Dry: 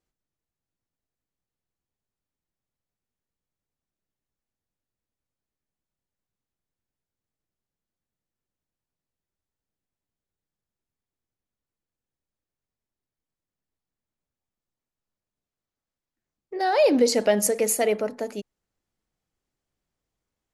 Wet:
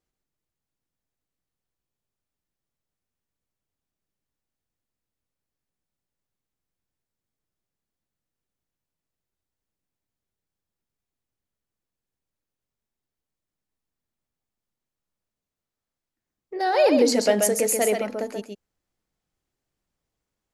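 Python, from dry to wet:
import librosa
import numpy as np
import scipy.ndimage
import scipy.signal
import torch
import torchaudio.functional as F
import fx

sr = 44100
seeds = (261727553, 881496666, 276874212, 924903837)

y = x + 10.0 ** (-5.0 / 20.0) * np.pad(x, (int(133 * sr / 1000.0), 0))[:len(x)]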